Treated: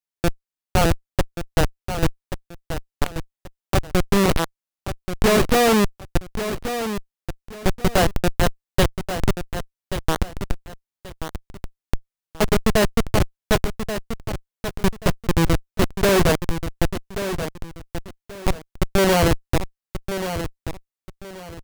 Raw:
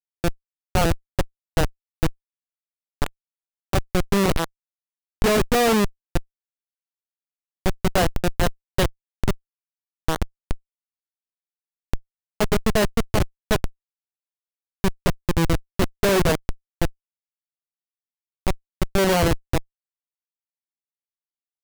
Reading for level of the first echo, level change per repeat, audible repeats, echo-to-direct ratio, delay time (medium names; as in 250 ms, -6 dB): -9.5 dB, -11.5 dB, 2, -9.0 dB, 1132 ms